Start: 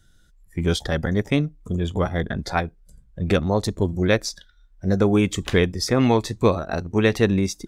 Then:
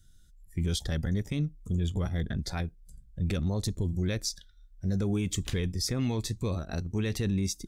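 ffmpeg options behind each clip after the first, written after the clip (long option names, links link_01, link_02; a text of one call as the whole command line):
ffmpeg -i in.wav -af "equalizer=frequency=860:width=0.33:gain=-14.5,alimiter=limit=-20.5dB:level=0:latency=1:release=11" out.wav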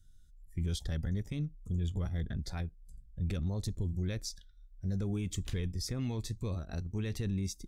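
ffmpeg -i in.wav -af "lowshelf=frequency=96:gain=8.5,volume=-8dB" out.wav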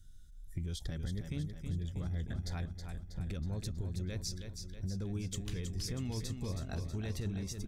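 ffmpeg -i in.wav -filter_complex "[0:a]acompressor=threshold=-40dB:ratio=6,asplit=2[link_01][link_02];[link_02]aecho=0:1:321|642|963|1284|1605|1926|2247:0.447|0.255|0.145|0.0827|0.0472|0.0269|0.0153[link_03];[link_01][link_03]amix=inputs=2:normalize=0,volume=4.5dB" out.wav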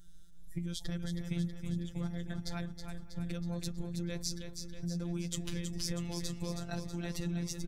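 ffmpeg -i in.wav -filter_complex "[0:a]afftfilt=real='hypot(re,im)*cos(PI*b)':imag='0':win_size=1024:overlap=0.75,asplit=2[link_01][link_02];[link_02]adelay=513.1,volume=-22dB,highshelf=frequency=4000:gain=-11.5[link_03];[link_01][link_03]amix=inputs=2:normalize=0,volume=6.5dB" out.wav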